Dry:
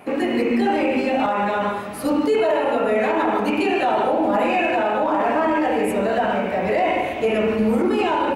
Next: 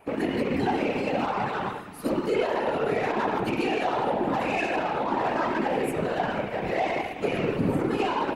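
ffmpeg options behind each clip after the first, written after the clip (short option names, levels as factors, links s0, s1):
-af "aeval=exprs='0.335*(cos(1*acos(clip(val(0)/0.335,-1,1)))-cos(1*PI/2))+0.0188*(cos(7*acos(clip(val(0)/0.335,-1,1)))-cos(7*PI/2))':c=same,bandreject=f=620:w=12,afftfilt=real='hypot(re,im)*cos(2*PI*random(0))':imag='hypot(re,im)*sin(2*PI*random(1))':win_size=512:overlap=0.75"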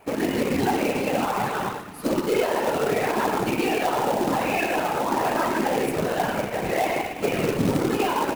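-af "acrusher=bits=3:mode=log:mix=0:aa=0.000001,volume=1.33"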